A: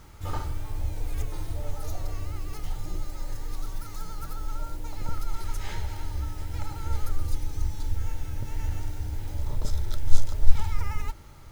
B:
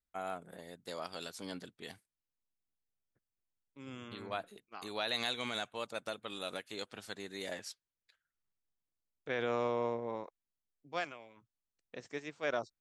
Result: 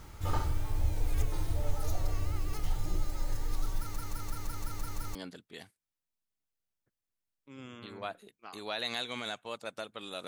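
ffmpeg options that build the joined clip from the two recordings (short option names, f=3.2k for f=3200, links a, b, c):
-filter_complex "[0:a]apad=whole_dur=10.27,atrim=end=10.27,asplit=8[a][b][c][d][e][f][g][h];[a]atrim=end=3.962[i];[b]atrim=start=3.788:end=3.962[j];[c]atrim=start=3.788:end=3.962[k];[d]atrim=start=3.788:end=3.962[l];[e]atrim=start=3.788:end=3.962[m];[f]atrim=start=3.788:end=3.962[n];[g]atrim=start=3.788:end=3.962[o];[h]atrim=start=3.788:end=3.962[p];[1:a]atrim=start=1.438:end=6.56[q];[i][j]acrossfade=d=0.004:c1=hsin:c2=hsin[r];[r][k]acrossfade=d=0.004:c1=hsin:c2=hsin[s];[s][l]acrossfade=d=0.004:c1=hsin:c2=hsin[t];[t][m]acrossfade=d=0.004:c1=hsin:c2=hsin[u];[u][n]acrossfade=d=0.004:c1=hsin:c2=hsin[v];[v][o]acrossfade=d=0.004:c1=hsin:c2=hsin[w];[w][p]acrossfade=d=0.004:c1=hsin:c2=hsin[x];[x][q]acrossfade=d=0.004:c1=hsin:c2=hsin"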